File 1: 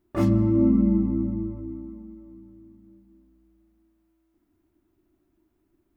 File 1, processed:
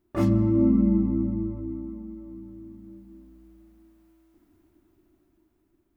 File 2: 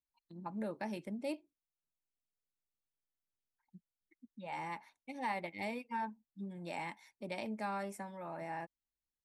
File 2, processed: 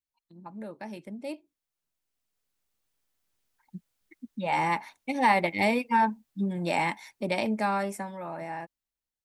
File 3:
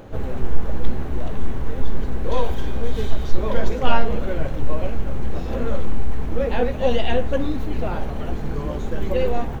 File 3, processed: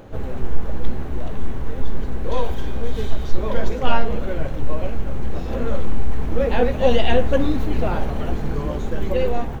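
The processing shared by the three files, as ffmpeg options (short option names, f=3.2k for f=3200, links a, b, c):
-af "dynaudnorm=f=680:g=7:m=16.5dB,volume=-1dB"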